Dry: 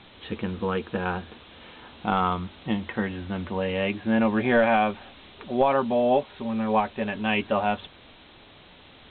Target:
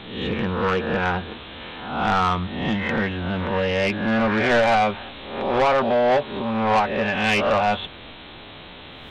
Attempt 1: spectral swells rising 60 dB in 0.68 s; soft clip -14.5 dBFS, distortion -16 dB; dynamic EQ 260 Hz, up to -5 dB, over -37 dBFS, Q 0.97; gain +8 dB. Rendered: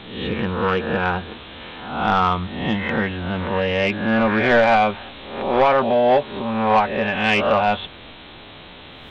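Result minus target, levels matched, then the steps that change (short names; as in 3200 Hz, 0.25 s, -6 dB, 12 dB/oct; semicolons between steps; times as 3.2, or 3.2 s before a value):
soft clip: distortion -6 dB
change: soft clip -20.5 dBFS, distortion -10 dB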